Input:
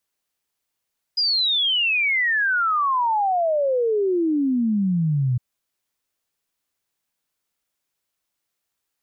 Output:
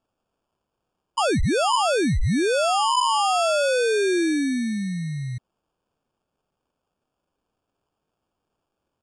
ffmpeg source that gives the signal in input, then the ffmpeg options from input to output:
-f lavfi -i "aevalsrc='0.133*clip(min(t,4.21-t)/0.01,0,1)*sin(2*PI*5000*4.21/log(120/5000)*(exp(log(120/5000)*t/4.21)-1))':duration=4.21:sample_rate=44100"
-filter_complex "[0:a]acrossover=split=290[link_01][link_02];[link_01]alimiter=level_in=3dB:limit=-24dB:level=0:latency=1,volume=-3dB[link_03];[link_03][link_02]amix=inputs=2:normalize=0,acrusher=samples=22:mix=1:aa=0.000001,aresample=22050,aresample=44100"

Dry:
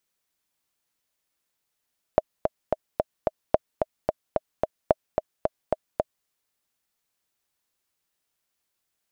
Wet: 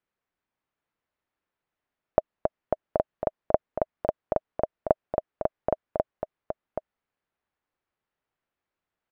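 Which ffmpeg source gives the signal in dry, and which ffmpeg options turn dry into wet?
-f lavfi -i "aevalsrc='pow(10,(-3.5-5*gte(mod(t,5*60/220),60/220))/20)*sin(2*PI*627*mod(t,60/220))*exp(-6.91*mod(t,60/220)/0.03)':duration=4.09:sample_rate=44100"
-af "lowpass=1900,aecho=1:1:777:0.473"

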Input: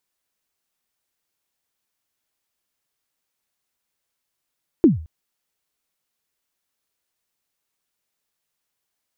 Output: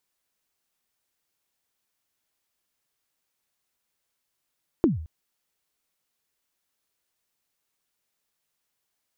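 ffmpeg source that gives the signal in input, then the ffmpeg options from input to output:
-f lavfi -i "aevalsrc='0.531*pow(10,-3*t/0.41)*sin(2*PI*(370*0.147/log(79/370)*(exp(log(79/370)*min(t,0.147)/0.147)-1)+79*max(t-0.147,0)))':duration=0.22:sample_rate=44100"
-af "acompressor=threshold=-19dB:ratio=6"

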